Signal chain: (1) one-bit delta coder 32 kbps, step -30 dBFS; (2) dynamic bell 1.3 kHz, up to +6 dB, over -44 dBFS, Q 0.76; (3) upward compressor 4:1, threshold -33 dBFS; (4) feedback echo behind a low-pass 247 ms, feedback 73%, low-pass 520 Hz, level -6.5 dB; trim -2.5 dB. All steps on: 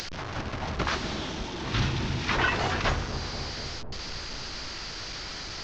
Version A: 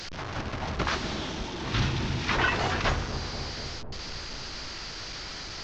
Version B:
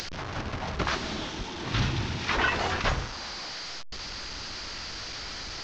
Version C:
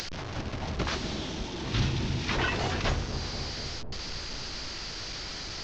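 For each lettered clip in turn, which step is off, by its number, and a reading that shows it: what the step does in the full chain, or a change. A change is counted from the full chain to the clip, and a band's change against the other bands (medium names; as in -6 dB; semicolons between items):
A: 3, momentary loudness spread change +1 LU; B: 4, echo-to-direct -13.5 dB to none; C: 2, momentary loudness spread change -2 LU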